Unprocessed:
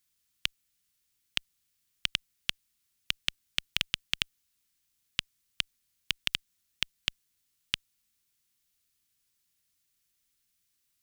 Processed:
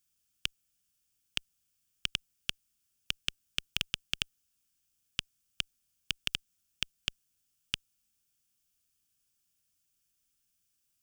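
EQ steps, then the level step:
thirty-one-band graphic EQ 400 Hz −5 dB, 1,000 Hz −9 dB, 2,000 Hz −11 dB, 4,000 Hz −8 dB, 12,500 Hz −4 dB
0.0 dB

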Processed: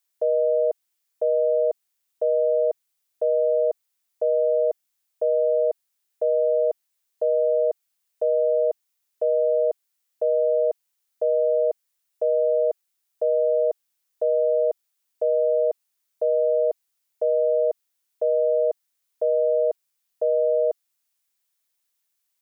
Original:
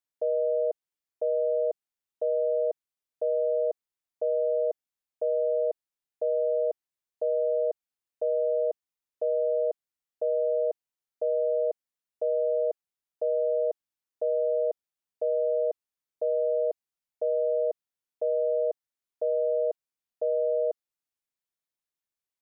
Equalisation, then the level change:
spectral tilt +2.5 dB per octave
+7.5 dB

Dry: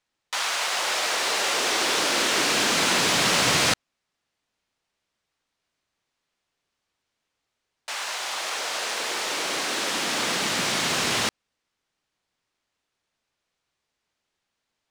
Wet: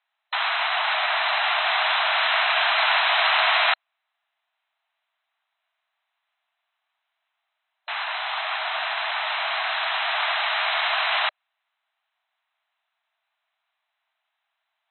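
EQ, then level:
linear-phase brick-wall band-pass 610–4,100 Hz
high-frequency loss of the air 150 metres
+5.5 dB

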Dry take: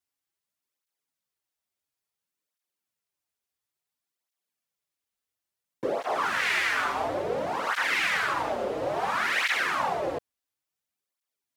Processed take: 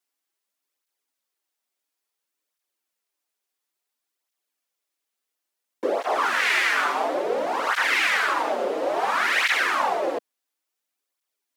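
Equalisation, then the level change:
high-pass filter 250 Hz 24 dB per octave
+4.5 dB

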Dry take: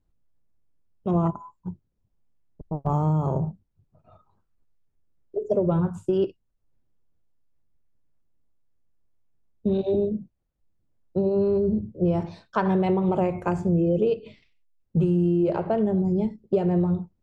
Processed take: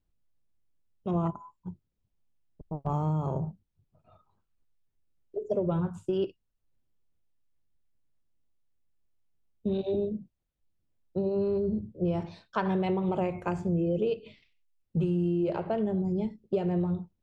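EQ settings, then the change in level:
parametric band 3,100 Hz +5.5 dB 1.5 octaves
−6.0 dB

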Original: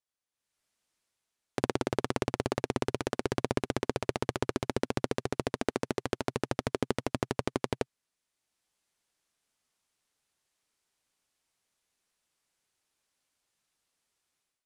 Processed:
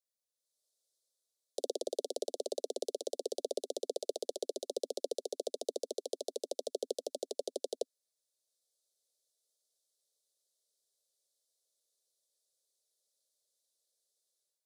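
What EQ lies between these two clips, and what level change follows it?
Butterworth high-pass 270 Hz 72 dB per octave
elliptic band-stop filter 580–3,700 Hz, stop band 40 dB
phaser with its sweep stopped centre 710 Hz, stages 4
+1.5 dB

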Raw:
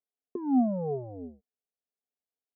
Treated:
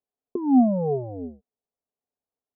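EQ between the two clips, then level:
low-pass filter 1,100 Hz 24 dB per octave
+7.0 dB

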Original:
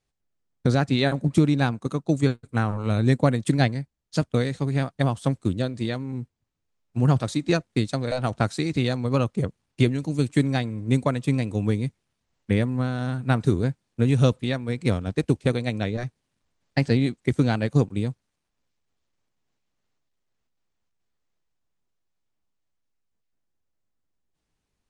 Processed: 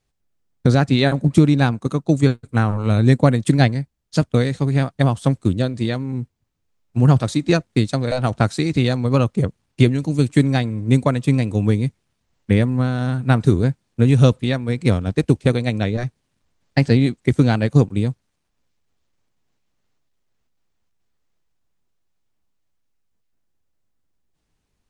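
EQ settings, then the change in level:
low-shelf EQ 200 Hz +3 dB
+4.5 dB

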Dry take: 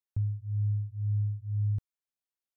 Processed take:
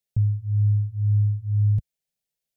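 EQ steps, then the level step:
parametric band 76 Hz +9.5 dB 2.5 octaves
phaser with its sweep stopped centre 300 Hz, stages 6
+8.0 dB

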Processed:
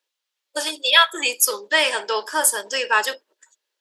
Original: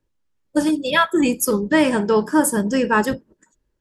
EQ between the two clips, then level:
high-pass filter 500 Hz 24 dB per octave
parametric band 3,600 Hz +13.5 dB 1.8 octaves
high-shelf EQ 9,300 Hz +9.5 dB
−3.5 dB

